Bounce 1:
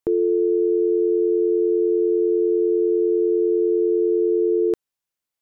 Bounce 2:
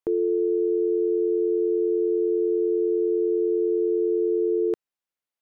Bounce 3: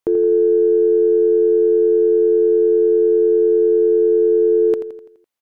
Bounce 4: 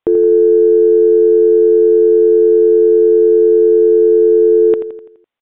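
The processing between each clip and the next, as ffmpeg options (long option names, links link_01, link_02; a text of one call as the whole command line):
ffmpeg -i in.wav -af "bass=frequency=250:gain=-5,treble=frequency=4000:gain=-6,volume=-3dB" out.wav
ffmpeg -i in.wav -af "aeval=exprs='0.15*(cos(1*acos(clip(val(0)/0.15,-1,1)))-cos(1*PI/2))+0.00133*(cos(4*acos(clip(val(0)/0.15,-1,1)))-cos(4*PI/2))':channel_layout=same,aecho=1:1:84|168|252|336|420|504:0.299|0.152|0.0776|0.0396|0.0202|0.0103,volume=7dB" out.wav
ffmpeg -i in.wav -af "aresample=8000,aresample=44100,volume=5dB" out.wav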